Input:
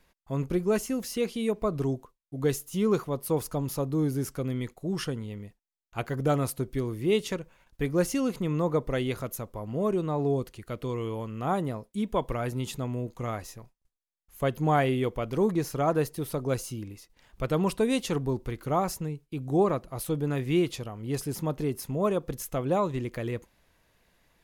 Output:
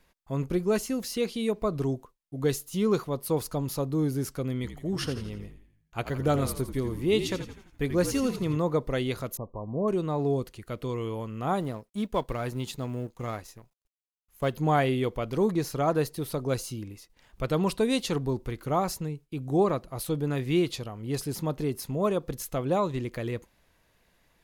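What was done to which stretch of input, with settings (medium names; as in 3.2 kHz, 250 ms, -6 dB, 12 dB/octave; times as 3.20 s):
4.55–8.57 s: frequency-shifting echo 84 ms, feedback 50%, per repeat -52 Hz, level -10 dB
9.37–9.88 s: brick-wall FIR low-pass 1.2 kHz
11.60–14.53 s: companding laws mixed up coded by A
whole clip: dynamic bell 4.2 kHz, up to +6 dB, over -57 dBFS, Q 2.9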